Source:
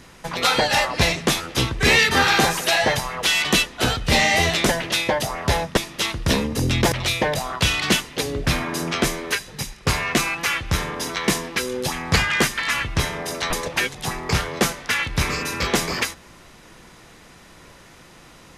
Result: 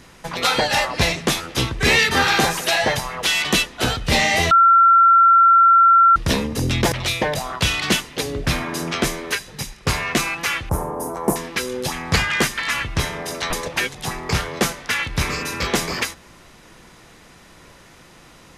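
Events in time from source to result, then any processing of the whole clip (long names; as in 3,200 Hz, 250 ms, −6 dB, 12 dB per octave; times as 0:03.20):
0:04.51–0:06.16: beep over 1,360 Hz −8.5 dBFS
0:10.69–0:11.36: drawn EQ curve 180 Hz 0 dB, 880 Hz +7 dB, 1,900 Hz −18 dB, 3,700 Hz −28 dB, 10,000 Hz +3 dB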